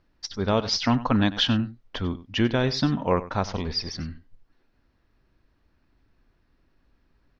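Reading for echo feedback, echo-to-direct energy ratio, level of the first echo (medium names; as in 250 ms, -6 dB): no regular repeats, -16.0 dB, -16.0 dB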